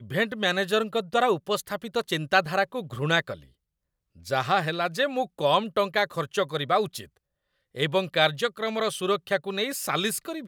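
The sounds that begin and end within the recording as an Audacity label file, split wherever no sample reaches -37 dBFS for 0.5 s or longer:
4.270000	7.050000	sound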